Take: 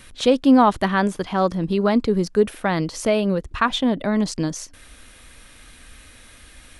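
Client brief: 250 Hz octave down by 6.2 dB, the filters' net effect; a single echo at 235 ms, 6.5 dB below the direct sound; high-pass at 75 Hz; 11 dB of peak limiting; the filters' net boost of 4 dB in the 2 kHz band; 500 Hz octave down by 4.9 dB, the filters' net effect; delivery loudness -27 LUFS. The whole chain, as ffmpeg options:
-af "highpass=75,equalizer=f=250:t=o:g=-6.5,equalizer=f=500:t=o:g=-4.5,equalizer=f=2000:t=o:g=5.5,alimiter=limit=0.188:level=0:latency=1,aecho=1:1:235:0.473,volume=0.841"

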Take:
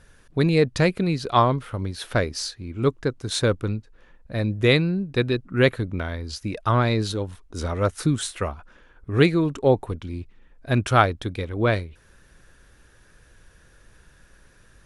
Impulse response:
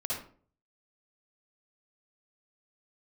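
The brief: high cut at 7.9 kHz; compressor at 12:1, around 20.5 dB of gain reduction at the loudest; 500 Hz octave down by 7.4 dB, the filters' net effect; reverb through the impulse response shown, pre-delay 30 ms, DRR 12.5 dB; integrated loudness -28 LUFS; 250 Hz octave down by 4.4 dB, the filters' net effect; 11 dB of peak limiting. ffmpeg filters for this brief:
-filter_complex "[0:a]lowpass=7900,equalizer=f=250:t=o:g=-4,equalizer=f=500:t=o:g=-8,acompressor=threshold=0.0178:ratio=12,alimiter=level_in=2.99:limit=0.0631:level=0:latency=1,volume=0.335,asplit=2[s0][s1];[1:a]atrim=start_sample=2205,adelay=30[s2];[s1][s2]afir=irnorm=-1:irlink=0,volume=0.15[s3];[s0][s3]amix=inputs=2:normalize=0,volume=5.62"

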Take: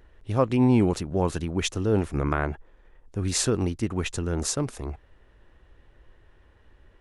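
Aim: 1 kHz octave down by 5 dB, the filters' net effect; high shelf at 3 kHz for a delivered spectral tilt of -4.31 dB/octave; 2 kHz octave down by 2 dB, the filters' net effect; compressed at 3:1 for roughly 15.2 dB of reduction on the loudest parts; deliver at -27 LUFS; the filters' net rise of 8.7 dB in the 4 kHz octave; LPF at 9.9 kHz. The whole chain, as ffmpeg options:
-af "lowpass=9900,equalizer=f=1000:t=o:g=-6,equalizer=f=2000:t=o:g=-6.5,highshelf=f=3000:g=6,equalizer=f=4000:t=o:g=8,acompressor=threshold=0.0141:ratio=3,volume=3.16"

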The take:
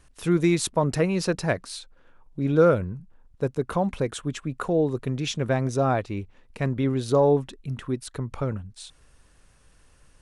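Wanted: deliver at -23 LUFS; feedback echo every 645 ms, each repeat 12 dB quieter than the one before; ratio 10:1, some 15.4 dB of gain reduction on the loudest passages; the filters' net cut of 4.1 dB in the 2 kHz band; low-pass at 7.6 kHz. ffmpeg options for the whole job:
-af "lowpass=7600,equalizer=f=2000:t=o:g=-5.5,acompressor=threshold=0.0355:ratio=10,aecho=1:1:645|1290|1935:0.251|0.0628|0.0157,volume=3.98"

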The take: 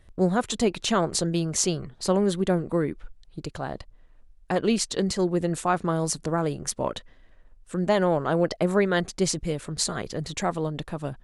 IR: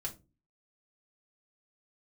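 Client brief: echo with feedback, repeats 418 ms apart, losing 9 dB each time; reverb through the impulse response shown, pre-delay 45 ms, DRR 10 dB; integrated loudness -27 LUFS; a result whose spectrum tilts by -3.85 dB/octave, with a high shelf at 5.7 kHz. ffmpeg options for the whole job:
-filter_complex "[0:a]highshelf=f=5700:g=9,aecho=1:1:418|836|1254|1672:0.355|0.124|0.0435|0.0152,asplit=2[s0][s1];[1:a]atrim=start_sample=2205,adelay=45[s2];[s1][s2]afir=irnorm=-1:irlink=0,volume=0.335[s3];[s0][s3]amix=inputs=2:normalize=0,volume=0.708"

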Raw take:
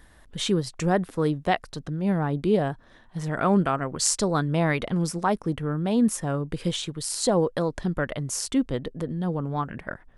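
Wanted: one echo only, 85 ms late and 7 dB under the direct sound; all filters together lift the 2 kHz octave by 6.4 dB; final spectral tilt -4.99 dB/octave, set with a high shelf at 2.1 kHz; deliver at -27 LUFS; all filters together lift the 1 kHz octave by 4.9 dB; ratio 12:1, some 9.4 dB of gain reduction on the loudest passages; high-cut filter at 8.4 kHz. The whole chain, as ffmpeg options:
-af "lowpass=8400,equalizer=f=1000:t=o:g=5.5,equalizer=f=2000:t=o:g=8.5,highshelf=f=2100:g=-4.5,acompressor=threshold=0.0631:ratio=12,aecho=1:1:85:0.447,volume=1.33"

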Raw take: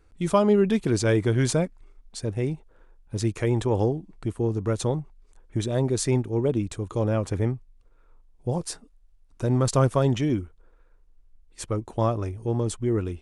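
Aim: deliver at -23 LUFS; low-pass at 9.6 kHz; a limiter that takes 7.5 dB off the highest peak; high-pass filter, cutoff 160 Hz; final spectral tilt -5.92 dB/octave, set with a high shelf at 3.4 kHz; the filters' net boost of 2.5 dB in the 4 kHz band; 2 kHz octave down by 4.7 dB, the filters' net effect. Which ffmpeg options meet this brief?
-af "highpass=160,lowpass=9600,equalizer=f=2000:t=o:g=-7,highshelf=f=3400:g=-3.5,equalizer=f=4000:t=o:g=7.5,volume=1.88,alimiter=limit=0.316:level=0:latency=1"

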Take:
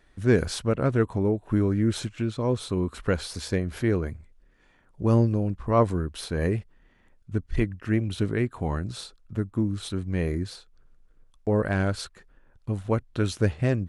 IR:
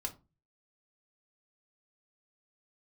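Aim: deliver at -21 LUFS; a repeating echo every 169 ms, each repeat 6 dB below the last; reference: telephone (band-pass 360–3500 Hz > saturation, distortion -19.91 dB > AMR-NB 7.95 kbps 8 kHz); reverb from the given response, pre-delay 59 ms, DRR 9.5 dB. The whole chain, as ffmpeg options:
-filter_complex "[0:a]aecho=1:1:169|338|507|676|845|1014:0.501|0.251|0.125|0.0626|0.0313|0.0157,asplit=2[s0][s1];[1:a]atrim=start_sample=2205,adelay=59[s2];[s1][s2]afir=irnorm=-1:irlink=0,volume=0.355[s3];[s0][s3]amix=inputs=2:normalize=0,highpass=360,lowpass=3500,asoftclip=threshold=0.188,volume=3.35" -ar 8000 -c:a libopencore_amrnb -b:a 7950

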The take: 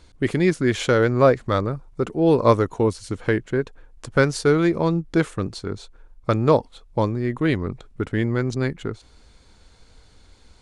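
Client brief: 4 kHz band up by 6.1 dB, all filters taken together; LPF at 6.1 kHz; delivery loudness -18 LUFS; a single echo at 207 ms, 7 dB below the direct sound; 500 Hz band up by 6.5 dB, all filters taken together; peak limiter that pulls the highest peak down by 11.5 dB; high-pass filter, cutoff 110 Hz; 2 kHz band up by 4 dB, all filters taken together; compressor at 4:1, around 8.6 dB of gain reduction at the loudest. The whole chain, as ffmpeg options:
-af "highpass=110,lowpass=6100,equalizer=f=500:t=o:g=7.5,equalizer=f=2000:t=o:g=3.5,equalizer=f=4000:t=o:g=7,acompressor=threshold=0.2:ratio=4,alimiter=limit=0.2:level=0:latency=1,aecho=1:1:207:0.447,volume=2.24"

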